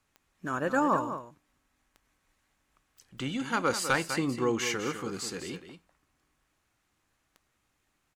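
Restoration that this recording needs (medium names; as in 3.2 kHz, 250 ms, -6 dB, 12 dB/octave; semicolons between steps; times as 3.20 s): clip repair -16 dBFS; de-click; inverse comb 200 ms -10 dB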